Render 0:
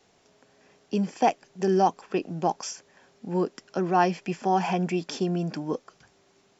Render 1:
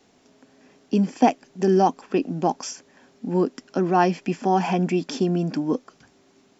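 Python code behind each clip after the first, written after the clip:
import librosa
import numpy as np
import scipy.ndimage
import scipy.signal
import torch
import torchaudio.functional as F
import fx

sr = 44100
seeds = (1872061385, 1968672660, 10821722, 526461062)

y = fx.peak_eq(x, sr, hz=260.0, db=11.0, octaves=0.53)
y = y * librosa.db_to_amplitude(2.0)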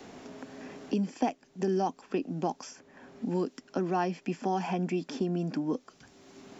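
y = fx.band_squash(x, sr, depth_pct=70)
y = y * librosa.db_to_amplitude(-9.0)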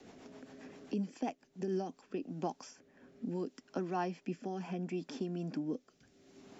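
y = fx.rotary_switch(x, sr, hz=7.5, then_hz=0.7, switch_at_s=1.42)
y = y * librosa.db_to_amplitude(-5.5)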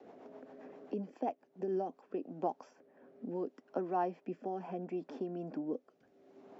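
y = fx.bandpass_q(x, sr, hz=600.0, q=1.2)
y = y * librosa.db_to_amplitude(5.0)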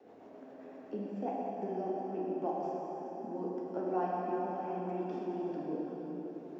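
y = fx.rev_plate(x, sr, seeds[0], rt60_s=4.8, hf_ratio=0.75, predelay_ms=0, drr_db=-5.5)
y = y * librosa.db_to_amplitude(-4.0)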